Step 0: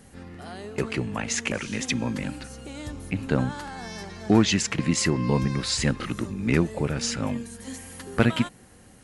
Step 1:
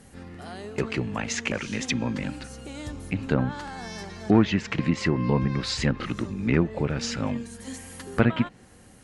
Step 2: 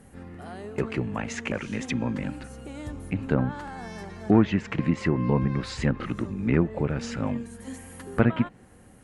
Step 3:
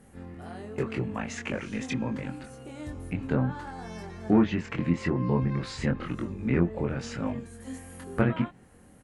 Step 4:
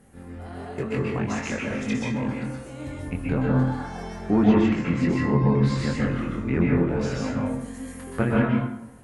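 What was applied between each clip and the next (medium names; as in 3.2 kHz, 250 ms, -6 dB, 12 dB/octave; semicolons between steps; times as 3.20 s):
low-pass that closes with the level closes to 2.3 kHz, closed at -18.5 dBFS
peaking EQ 4.9 kHz -10 dB 1.7 oct
doubling 23 ms -4 dB; trim -4 dB
plate-style reverb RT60 0.8 s, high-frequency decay 0.55×, pre-delay 115 ms, DRR -3.5 dB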